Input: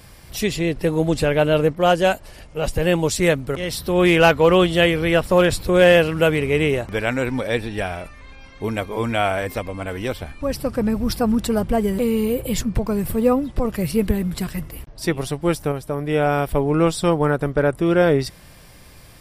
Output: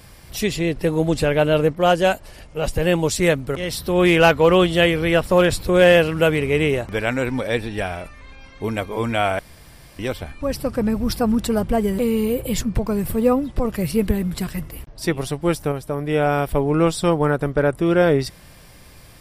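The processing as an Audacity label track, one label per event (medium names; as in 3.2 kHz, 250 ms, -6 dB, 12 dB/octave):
9.390000	9.990000	room tone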